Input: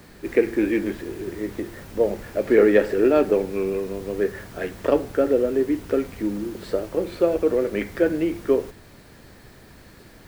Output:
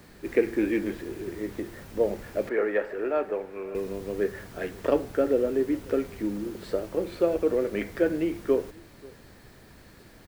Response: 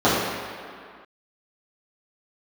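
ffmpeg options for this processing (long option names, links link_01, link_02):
-filter_complex "[0:a]asettb=1/sr,asplit=3[link_01][link_02][link_03];[link_01]atrim=end=2.494[link_04];[link_02]atrim=start=2.49:end=3.75,asetpts=PTS-STARTPTS,afade=type=in:duration=0.004:curve=qsin,afade=type=out:start_time=1.256:duration=0.004:curve=qsin,acrossover=split=520 2300:gain=0.2 1 0.178[link_05][link_06][link_07];[link_05][link_06][link_07]amix=inputs=3:normalize=0[link_08];[link_03]atrim=start=3.746[link_09];[link_04][link_08]acrossfade=duration=0.004:curve1=hsin:curve2=qsin[link_10];[link_10][link_09]acrossfade=duration=0.004:curve1=qsin:curve2=hsin,aecho=1:1:537:0.0631,volume=-4dB"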